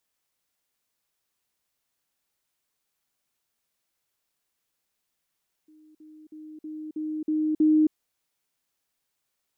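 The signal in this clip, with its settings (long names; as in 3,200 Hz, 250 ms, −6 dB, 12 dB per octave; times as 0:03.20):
level staircase 309 Hz −52 dBFS, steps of 6 dB, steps 7, 0.27 s 0.05 s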